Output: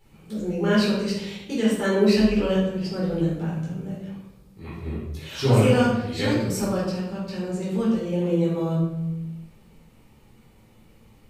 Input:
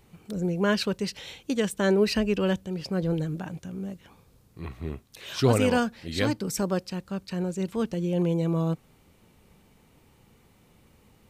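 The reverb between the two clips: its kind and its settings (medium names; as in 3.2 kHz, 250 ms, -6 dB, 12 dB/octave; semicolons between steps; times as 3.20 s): simulated room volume 330 m³, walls mixed, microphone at 4.2 m; trim -8.5 dB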